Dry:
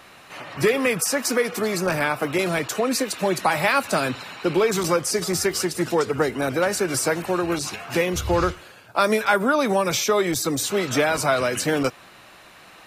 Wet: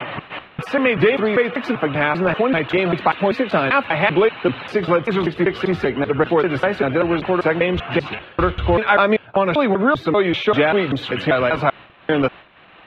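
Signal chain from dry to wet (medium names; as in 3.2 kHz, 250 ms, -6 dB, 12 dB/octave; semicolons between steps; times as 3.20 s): slices played last to first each 195 ms, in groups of 3; resonant high shelf 4.2 kHz -8 dB, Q 3; in parallel at +2 dB: compression, threshold -33 dBFS, peak gain reduction 18.5 dB; on the sum: expander -31 dBFS; distance through air 310 m; trim +3.5 dB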